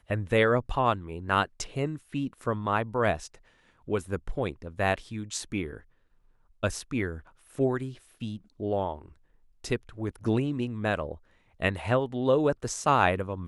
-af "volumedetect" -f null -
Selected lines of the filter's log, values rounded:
mean_volume: -29.6 dB
max_volume: -8.1 dB